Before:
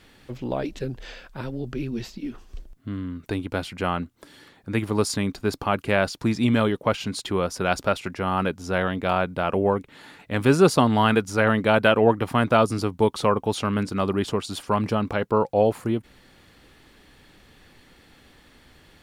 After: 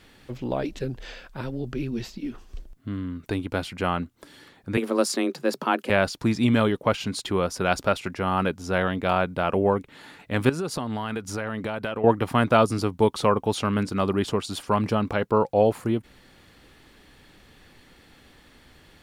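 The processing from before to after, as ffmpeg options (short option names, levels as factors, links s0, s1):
-filter_complex "[0:a]asettb=1/sr,asplit=3[s0][s1][s2];[s0]atrim=end=4.774[s3];[s1]atrim=start=4.77:end=5.9,asetpts=PTS-STARTPTS,afade=t=in:d=0.004:c=qsin,afade=t=out:st=1.126:d=0.004:c=qsin,afreqshift=120[s4];[s2]atrim=start=5.896[s5];[s3][s4]acrossfade=d=0.004:c1=hsin:c2=qsin[s6];[s6][s5]acrossfade=d=0.004:c1=qsin:c2=hsin,asettb=1/sr,asplit=3[s7][s8][s9];[s7]atrim=end=10.494[s10];[s8]atrim=start=10.49:end=12.04,asetpts=PTS-STARTPTS,afade=t=in:d=0.004:c=qsin,afade=t=out:st=1.546:d=0.004:c=qsin,acompressor=threshold=0.0501:ratio=6:attack=3.2:release=140:knee=1:detection=peak[s11];[s9]atrim=start=12.036[s12];[s10][s11]acrossfade=d=0.004:c1=hsin:c2=qsin[s13];[s13][s12]acrossfade=d=0.004:c1=qsin:c2=hsin"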